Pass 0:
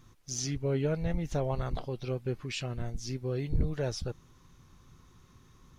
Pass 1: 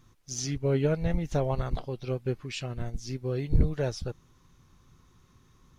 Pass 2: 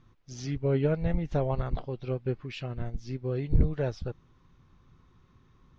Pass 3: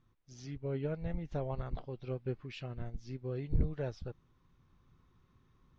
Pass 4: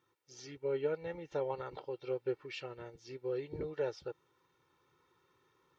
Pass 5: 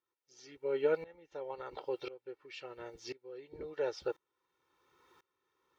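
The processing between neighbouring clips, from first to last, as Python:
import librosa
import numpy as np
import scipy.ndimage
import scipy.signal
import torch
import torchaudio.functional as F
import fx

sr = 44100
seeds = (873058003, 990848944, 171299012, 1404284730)

y1 = fx.upward_expand(x, sr, threshold_db=-40.0, expansion=1.5)
y1 = F.gain(torch.from_numpy(y1), 6.5).numpy()
y2 = fx.air_absorb(y1, sr, metres=200.0)
y3 = fx.rider(y2, sr, range_db=3, speed_s=2.0)
y3 = F.gain(torch.from_numpy(y3), -8.5).numpy()
y4 = scipy.signal.sosfilt(scipy.signal.butter(2, 310.0, 'highpass', fs=sr, output='sos'), y3)
y4 = y4 + 0.75 * np.pad(y4, (int(2.2 * sr / 1000.0), 0))[:len(y4)]
y4 = F.gain(torch.from_numpy(y4), 2.0).numpy()
y5 = fx.peak_eq(y4, sr, hz=130.0, db=-11.0, octaves=1.4)
y5 = fx.tremolo_decay(y5, sr, direction='swelling', hz=0.96, depth_db=24)
y5 = F.gain(torch.from_numpy(y5), 9.5).numpy()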